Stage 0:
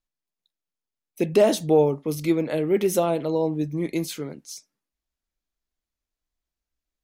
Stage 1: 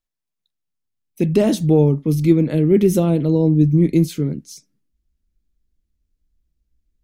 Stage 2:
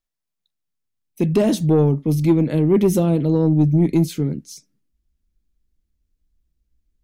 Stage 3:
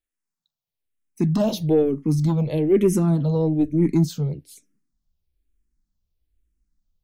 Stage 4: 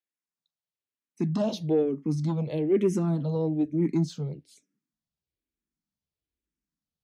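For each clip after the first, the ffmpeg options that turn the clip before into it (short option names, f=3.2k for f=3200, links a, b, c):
-af "asubboost=boost=11.5:cutoff=250"
-af "asoftclip=type=tanh:threshold=-7dB"
-filter_complex "[0:a]asplit=2[a][b];[b]afreqshift=-1.1[c];[a][c]amix=inputs=2:normalize=1"
-af "highpass=140,lowpass=6.7k,volume=-5.5dB"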